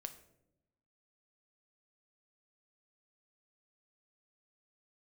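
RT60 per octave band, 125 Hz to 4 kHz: 1.3, 1.3, 1.0, 0.70, 0.55, 0.45 seconds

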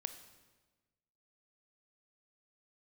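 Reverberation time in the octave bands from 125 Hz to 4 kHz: 1.5, 1.5, 1.3, 1.2, 1.1, 1.1 seconds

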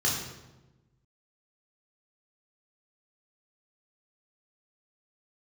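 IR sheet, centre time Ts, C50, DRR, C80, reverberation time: 51 ms, 3.0 dB, −4.0 dB, 5.5 dB, 1.1 s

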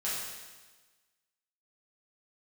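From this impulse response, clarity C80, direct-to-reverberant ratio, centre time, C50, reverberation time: 2.0 dB, −9.5 dB, 90 ms, −1.0 dB, 1.3 s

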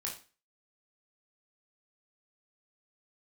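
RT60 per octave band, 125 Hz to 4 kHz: 0.35, 0.40, 0.35, 0.35, 0.35, 0.35 seconds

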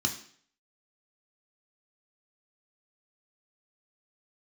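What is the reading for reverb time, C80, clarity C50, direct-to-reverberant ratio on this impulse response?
0.55 s, 13.5 dB, 10.0 dB, 2.0 dB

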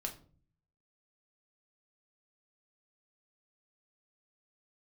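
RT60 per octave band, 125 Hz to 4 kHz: 0.90, 0.70, 0.50, 0.40, 0.30, 0.30 seconds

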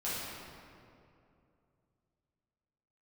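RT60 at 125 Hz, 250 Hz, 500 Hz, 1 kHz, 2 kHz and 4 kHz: 3.4, 3.0, 2.8, 2.4, 2.0, 1.5 seconds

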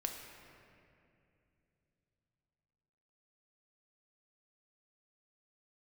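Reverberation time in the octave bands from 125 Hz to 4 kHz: 4.6, 3.8, 3.0, 2.3, 2.4, 1.7 seconds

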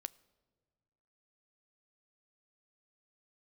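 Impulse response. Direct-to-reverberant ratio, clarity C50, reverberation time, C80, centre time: 16.5 dB, 23.0 dB, non-exponential decay, 24.5 dB, 2 ms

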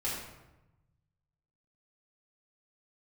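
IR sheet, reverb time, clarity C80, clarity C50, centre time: 1.0 s, 4.0 dB, 1.5 dB, 61 ms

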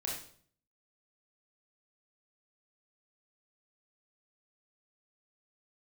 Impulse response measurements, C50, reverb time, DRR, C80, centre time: 2.5 dB, 0.55 s, −3.5 dB, 7.0 dB, 43 ms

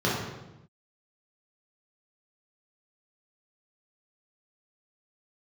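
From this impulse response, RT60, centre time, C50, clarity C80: 0.95 s, 66 ms, 1.0 dB, 4.0 dB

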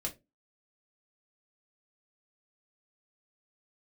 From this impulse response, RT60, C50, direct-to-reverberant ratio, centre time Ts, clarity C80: 0.25 s, 17.0 dB, −1.5 dB, 11 ms, 24.5 dB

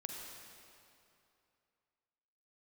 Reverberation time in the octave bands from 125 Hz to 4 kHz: 2.7, 2.6, 2.7, 2.7, 2.4, 2.2 seconds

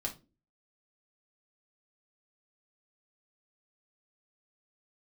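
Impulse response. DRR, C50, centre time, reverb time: −0.5 dB, 14.0 dB, 13 ms, 0.30 s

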